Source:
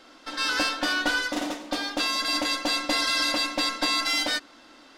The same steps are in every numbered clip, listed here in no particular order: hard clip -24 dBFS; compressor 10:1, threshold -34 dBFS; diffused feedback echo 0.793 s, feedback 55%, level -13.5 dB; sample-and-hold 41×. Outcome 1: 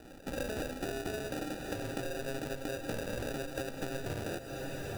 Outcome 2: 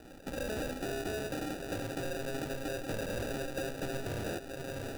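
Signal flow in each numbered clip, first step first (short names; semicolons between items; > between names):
sample-and-hold > diffused feedback echo > compressor > hard clip; hard clip > diffused feedback echo > compressor > sample-and-hold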